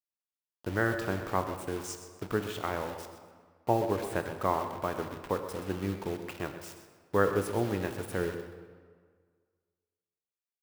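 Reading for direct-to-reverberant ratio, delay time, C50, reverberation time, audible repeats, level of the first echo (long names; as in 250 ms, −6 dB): 6.0 dB, 127 ms, 7.5 dB, 1.8 s, 1, −12.0 dB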